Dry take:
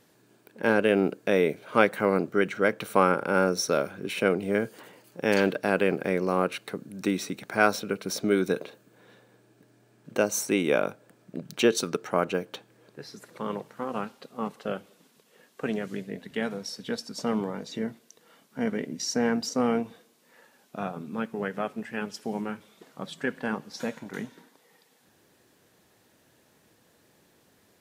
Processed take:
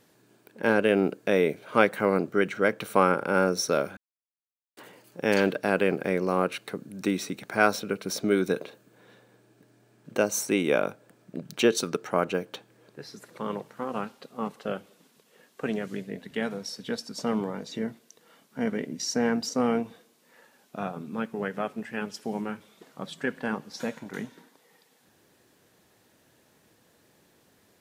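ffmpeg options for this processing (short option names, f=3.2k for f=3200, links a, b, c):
-filter_complex "[0:a]asplit=3[a][b][c];[a]atrim=end=3.97,asetpts=PTS-STARTPTS,afade=t=out:st=3.966:d=0.004:c=hsin[d];[b]atrim=start=3.97:end=4.77,asetpts=PTS-STARTPTS,volume=0[e];[c]atrim=start=4.77,asetpts=PTS-STARTPTS,afade=t=in:d=0.004:c=hsin[f];[d][e][f]concat=n=3:v=0:a=1"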